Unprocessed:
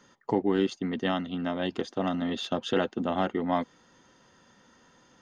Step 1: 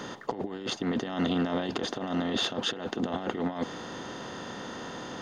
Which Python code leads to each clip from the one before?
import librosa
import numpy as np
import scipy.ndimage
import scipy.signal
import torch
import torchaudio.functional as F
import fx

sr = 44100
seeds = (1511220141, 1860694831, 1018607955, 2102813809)

y = fx.bin_compress(x, sr, power=0.6)
y = fx.over_compress(y, sr, threshold_db=-29.0, ratio=-0.5)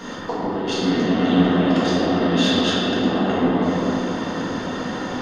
y = fx.room_shoebox(x, sr, seeds[0], volume_m3=220.0, walls='hard', distance_m=1.7)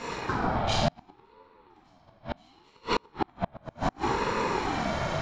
y = fx.gate_flip(x, sr, shuts_db=-10.0, range_db=-37)
y = fx.ring_lfo(y, sr, carrier_hz=550.0, swing_pct=30, hz=0.69)